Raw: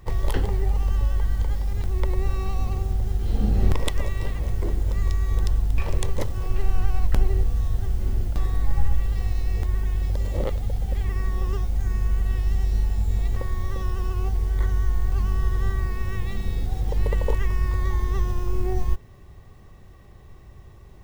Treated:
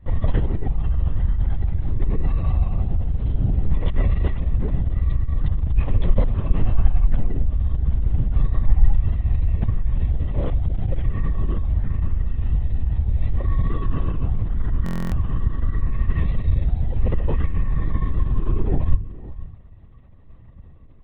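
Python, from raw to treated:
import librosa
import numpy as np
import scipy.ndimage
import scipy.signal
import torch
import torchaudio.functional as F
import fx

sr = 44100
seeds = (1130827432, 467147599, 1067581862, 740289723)

p1 = fx.tilt_eq(x, sr, slope=-1.5)
p2 = np.sign(p1) * np.maximum(np.abs(p1) - 10.0 ** (-30.5 / 20.0), 0.0)
p3 = p1 + F.gain(torch.from_numpy(p2), -3.0).numpy()
p4 = fx.peak_eq(p3, sr, hz=78.0, db=13.5, octaves=0.2)
p5 = fx.rider(p4, sr, range_db=10, speed_s=0.5)
p6 = p5 + fx.echo_single(p5, sr, ms=505, db=-16.5, dry=0)
p7 = fx.lpc_vocoder(p6, sr, seeds[0], excitation='whisper', order=16)
p8 = fx.buffer_glitch(p7, sr, at_s=(14.84,), block=1024, repeats=11)
y = F.gain(torch.from_numpy(p8), -9.0).numpy()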